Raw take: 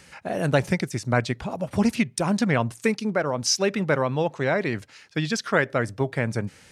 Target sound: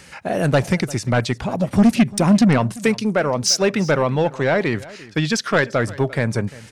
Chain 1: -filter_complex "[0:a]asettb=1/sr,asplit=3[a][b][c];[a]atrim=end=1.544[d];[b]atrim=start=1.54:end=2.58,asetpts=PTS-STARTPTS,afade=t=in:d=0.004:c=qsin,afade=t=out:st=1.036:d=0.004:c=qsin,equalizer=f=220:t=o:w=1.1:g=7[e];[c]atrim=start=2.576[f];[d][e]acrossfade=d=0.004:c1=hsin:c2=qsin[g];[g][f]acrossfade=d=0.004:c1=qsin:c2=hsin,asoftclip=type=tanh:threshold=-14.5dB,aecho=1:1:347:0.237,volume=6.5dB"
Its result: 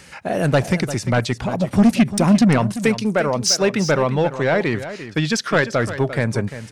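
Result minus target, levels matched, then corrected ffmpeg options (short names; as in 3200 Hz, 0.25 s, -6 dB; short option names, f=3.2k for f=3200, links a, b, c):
echo-to-direct +7.5 dB
-filter_complex "[0:a]asettb=1/sr,asplit=3[a][b][c];[a]atrim=end=1.544[d];[b]atrim=start=1.54:end=2.58,asetpts=PTS-STARTPTS,afade=t=in:d=0.004:c=qsin,afade=t=out:st=1.036:d=0.004:c=qsin,equalizer=f=220:t=o:w=1.1:g=7[e];[c]atrim=start=2.576[f];[d][e]acrossfade=d=0.004:c1=hsin:c2=qsin[g];[g][f]acrossfade=d=0.004:c1=qsin:c2=hsin,asoftclip=type=tanh:threshold=-14.5dB,aecho=1:1:347:0.1,volume=6.5dB"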